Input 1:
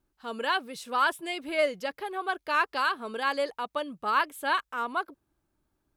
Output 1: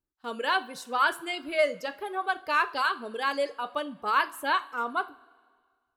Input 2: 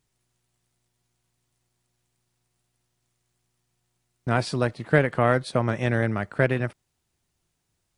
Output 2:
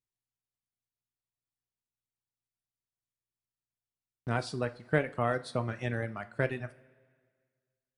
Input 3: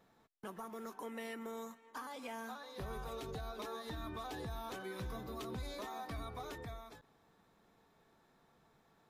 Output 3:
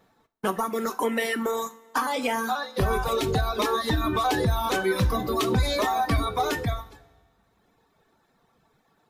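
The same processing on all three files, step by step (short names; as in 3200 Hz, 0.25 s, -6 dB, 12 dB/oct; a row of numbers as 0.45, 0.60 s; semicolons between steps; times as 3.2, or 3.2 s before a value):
reverb removal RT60 1.4 s; gate -52 dBFS, range -14 dB; two-slope reverb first 0.32 s, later 1.8 s, from -18 dB, DRR 9.5 dB; normalise peaks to -12 dBFS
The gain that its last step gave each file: +0.5, -8.0, +20.5 dB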